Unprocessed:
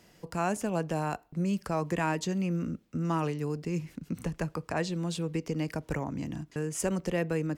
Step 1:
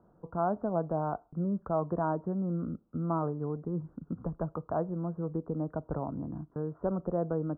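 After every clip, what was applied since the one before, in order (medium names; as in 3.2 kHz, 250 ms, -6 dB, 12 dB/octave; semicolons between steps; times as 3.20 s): dynamic bell 660 Hz, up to +6 dB, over -49 dBFS, Q 3.9; steep low-pass 1.4 kHz 72 dB/octave; trim -2 dB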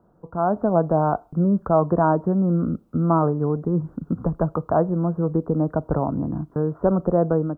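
level rider gain up to 8.5 dB; trim +3.5 dB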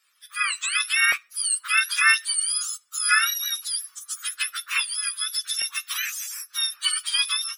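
spectrum inverted on a logarithmic axis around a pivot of 1.3 kHz; LFO high-pass saw up 0.89 Hz 640–1600 Hz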